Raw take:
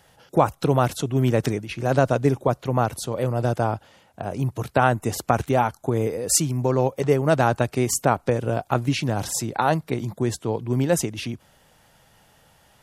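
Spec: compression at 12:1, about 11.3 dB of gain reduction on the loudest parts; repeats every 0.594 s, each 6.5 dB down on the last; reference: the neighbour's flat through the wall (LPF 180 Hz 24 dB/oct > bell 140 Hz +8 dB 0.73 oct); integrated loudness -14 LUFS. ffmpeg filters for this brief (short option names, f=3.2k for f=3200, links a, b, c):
-af "acompressor=threshold=-24dB:ratio=12,lowpass=f=180:w=0.5412,lowpass=f=180:w=1.3066,equalizer=f=140:t=o:w=0.73:g=8,aecho=1:1:594|1188|1782|2376|2970|3564:0.473|0.222|0.105|0.0491|0.0231|0.0109,volume=15dB"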